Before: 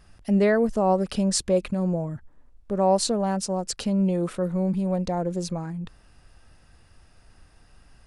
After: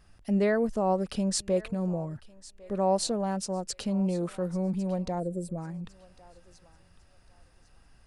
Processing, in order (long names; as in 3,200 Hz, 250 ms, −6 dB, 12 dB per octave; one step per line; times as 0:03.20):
feedback echo with a high-pass in the loop 1,102 ms, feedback 32%, high-pass 690 Hz, level −18.5 dB
gain on a spectral selection 0:05.20–0:05.58, 700–7,300 Hz −16 dB
level −5 dB